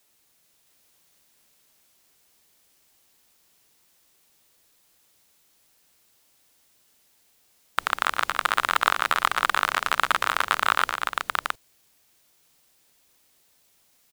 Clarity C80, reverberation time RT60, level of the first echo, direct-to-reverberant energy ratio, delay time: no reverb audible, no reverb audible, −10.0 dB, no reverb audible, 116 ms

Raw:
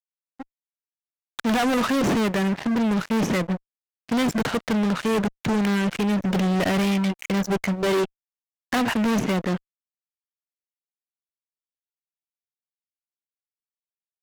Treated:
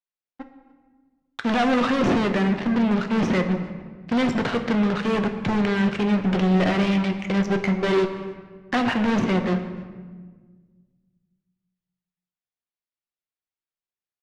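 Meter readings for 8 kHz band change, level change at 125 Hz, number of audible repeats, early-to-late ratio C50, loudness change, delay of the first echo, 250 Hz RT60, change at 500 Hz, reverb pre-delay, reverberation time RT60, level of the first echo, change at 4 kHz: can't be measured, +1.5 dB, 1, 9.0 dB, +1.0 dB, 294 ms, 2.1 s, +1.5 dB, 6 ms, 1.5 s, −23.0 dB, −1.0 dB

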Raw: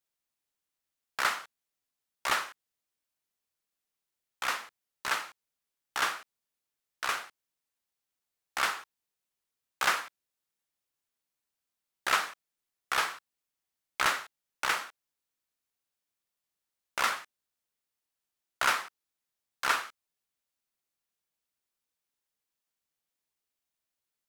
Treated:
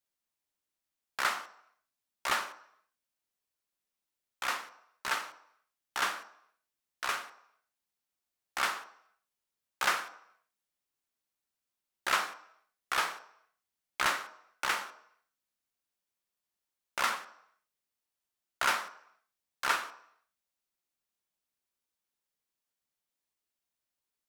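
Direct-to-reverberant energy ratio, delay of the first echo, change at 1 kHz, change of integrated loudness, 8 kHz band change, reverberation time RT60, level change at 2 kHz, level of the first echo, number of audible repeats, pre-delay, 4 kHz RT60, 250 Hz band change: 10.0 dB, no echo audible, −1.5 dB, −2.0 dB, −2.0 dB, 0.70 s, −2.0 dB, no echo audible, no echo audible, 3 ms, 0.70 s, −0.5 dB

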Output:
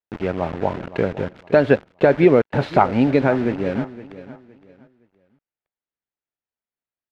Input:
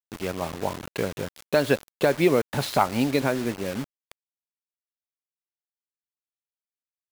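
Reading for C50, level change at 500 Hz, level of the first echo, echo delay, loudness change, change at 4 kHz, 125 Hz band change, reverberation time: no reverb audible, +7.0 dB, −16.0 dB, 515 ms, +6.5 dB, −5.0 dB, +7.0 dB, no reverb audible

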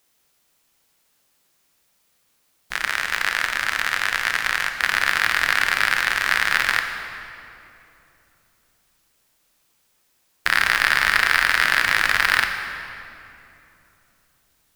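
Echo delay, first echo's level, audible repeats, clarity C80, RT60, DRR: no echo audible, no echo audible, no echo audible, 7.0 dB, 3.0 s, 5.0 dB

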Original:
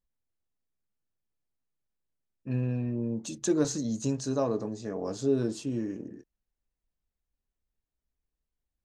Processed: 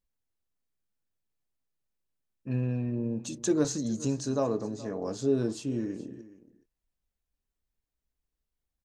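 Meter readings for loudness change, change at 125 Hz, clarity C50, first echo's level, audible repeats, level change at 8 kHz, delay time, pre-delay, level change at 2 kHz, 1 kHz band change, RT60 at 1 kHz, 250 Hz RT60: 0.0 dB, 0.0 dB, no reverb audible, −18.0 dB, 1, 0.0 dB, 421 ms, no reverb audible, 0.0 dB, 0.0 dB, no reverb audible, no reverb audible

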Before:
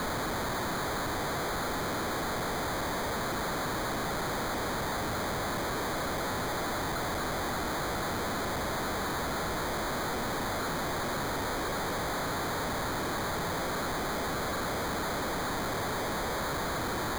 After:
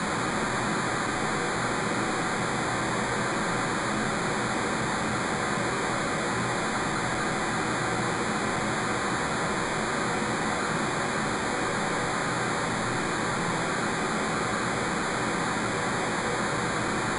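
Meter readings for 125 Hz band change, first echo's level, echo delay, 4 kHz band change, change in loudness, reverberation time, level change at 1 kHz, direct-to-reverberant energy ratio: +5.0 dB, no echo audible, no echo audible, +3.0 dB, +5.0 dB, 0.50 s, +4.5 dB, 3.5 dB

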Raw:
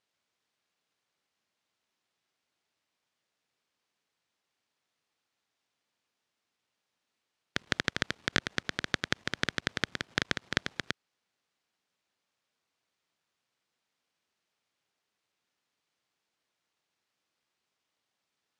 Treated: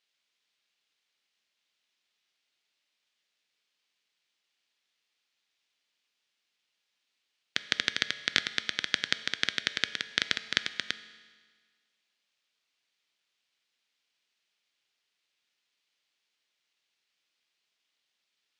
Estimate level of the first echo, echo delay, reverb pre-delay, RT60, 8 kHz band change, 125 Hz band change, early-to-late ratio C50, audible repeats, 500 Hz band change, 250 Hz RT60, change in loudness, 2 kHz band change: no echo audible, no echo audible, 5 ms, 1.6 s, +2.5 dB, −10.5 dB, 14.0 dB, no echo audible, −5.5 dB, 1.6 s, +3.0 dB, +1.5 dB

